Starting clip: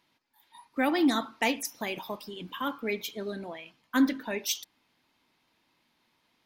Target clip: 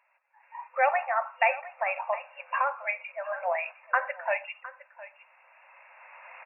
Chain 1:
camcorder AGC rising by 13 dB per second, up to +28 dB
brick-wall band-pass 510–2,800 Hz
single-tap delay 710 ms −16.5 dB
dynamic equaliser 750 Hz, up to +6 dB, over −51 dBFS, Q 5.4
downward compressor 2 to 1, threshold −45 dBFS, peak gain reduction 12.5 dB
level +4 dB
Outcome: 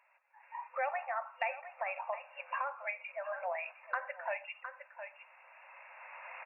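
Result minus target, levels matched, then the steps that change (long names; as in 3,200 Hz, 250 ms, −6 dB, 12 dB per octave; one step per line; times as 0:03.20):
downward compressor: peak gain reduction +12.5 dB
remove: downward compressor 2 to 1, threshold −45 dBFS, peak gain reduction 12.5 dB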